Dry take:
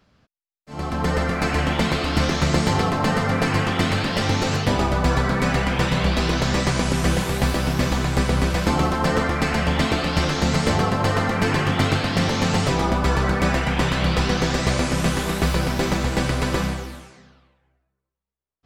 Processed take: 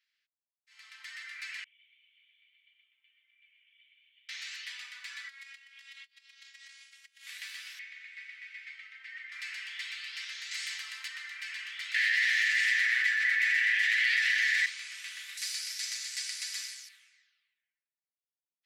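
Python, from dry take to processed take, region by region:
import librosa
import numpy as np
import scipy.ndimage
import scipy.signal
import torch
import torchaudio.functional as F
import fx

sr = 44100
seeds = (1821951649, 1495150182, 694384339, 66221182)

y = fx.chain(x, sr, fx.law_mismatch(coded='mu'),
    fx.formant_cascade(vowel='i'),
    fx.peak_eq(hz=1900.0, db=-10.5, octaves=2.8), at=(1.64, 4.29))
y = fx.chain(y, sr, fx.robotise(hz=274.0),
    fx.transformer_sat(knee_hz=210.0), at=(5.28, 7.27))
y = fx.chain(y, sr, fx.law_mismatch(coded='A'),
    fx.bandpass_q(hz=2100.0, q=3.3),
    fx.comb(ms=3.2, depth=0.45), at=(7.79, 9.32))
y = fx.chain(y, sr, fx.highpass(hz=360.0, slope=12),
    fx.high_shelf(hz=5200.0, db=7.0),
    fx.env_flatten(amount_pct=50), at=(10.51, 11.08))
y = fx.chain(y, sr, fx.lower_of_two(delay_ms=8.6),
    fx.highpass_res(hz=1800.0, q=7.6),
    fx.env_flatten(amount_pct=100), at=(11.94, 14.66))
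y = fx.chain(y, sr, fx.law_mismatch(coded='A'),
    fx.band_shelf(hz=7200.0, db=14.5, octaves=1.7), at=(15.37, 16.89))
y = scipy.signal.sosfilt(scipy.signal.cheby1(4, 1.0, 1900.0, 'highpass', fs=sr, output='sos'), y)
y = fx.high_shelf(y, sr, hz=4600.0, db=-9.5)
y = F.gain(torch.from_numpy(y), -8.0).numpy()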